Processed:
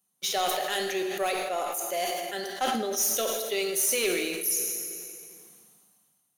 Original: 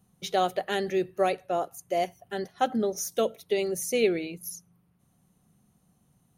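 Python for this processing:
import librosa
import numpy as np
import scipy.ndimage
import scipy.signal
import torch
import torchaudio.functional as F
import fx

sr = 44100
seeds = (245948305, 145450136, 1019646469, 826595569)

y = scipy.signal.sosfilt(scipy.signal.butter(2, 170.0, 'highpass', fs=sr, output='sos'), x)
y = fx.tilt_eq(y, sr, slope=3.5)
y = fx.leveller(y, sr, passes=2)
y = fx.rev_plate(y, sr, seeds[0], rt60_s=1.6, hf_ratio=0.85, predelay_ms=0, drr_db=4.5)
y = fx.sustainer(y, sr, db_per_s=27.0)
y = F.gain(torch.from_numpy(y), -8.5).numpy()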